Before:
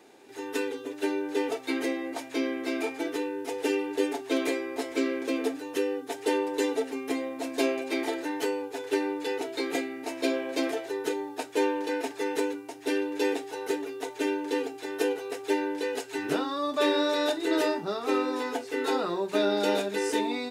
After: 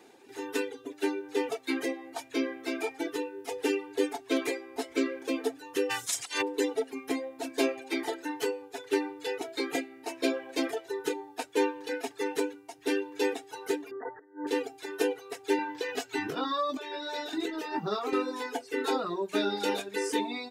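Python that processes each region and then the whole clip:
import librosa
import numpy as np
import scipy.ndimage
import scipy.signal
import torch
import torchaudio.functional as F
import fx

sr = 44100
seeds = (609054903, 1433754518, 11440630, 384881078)

y = fx.spec_clip(x, sr, under_db=23, at=(5.89, 6.41), fade=0.02)
y = fx.peak_eq(y, sr, hz=7400.0, db=14.0, octaves=1.5, at=(5.89, 6.41), fade=0.02)
y = fx.over_compress(y, sr, threshold_db=-26.0, ratio=-0.5, at=(5.89, 6.41), fade=0.02)
y = fx.chain(y, sr, fx.brickwall_lowpass(high_hz=2000.0),
    fx.over_compress(threshold_db=-35.0, ratio=-0.5),
    fx.peak_eq(hz=150.0, db=-3.0, octaves=1.1), at=(13.91, 14.47))
y = fx.chain(y, sr, fx.peak_eq(hz=10000.0, db=-8.5, octaves=0.57),
    fx.over_compress(threshold_db=-30.0, ratio=-1.0),
    fx.doubler(ms=19.0, db=-6), at=(15.57, 18.13))
y = fx.dereverb_blind(y, sr, rt60_s=1.6)
y = fx.notch(y, sr, hz=610.0, q=12.0)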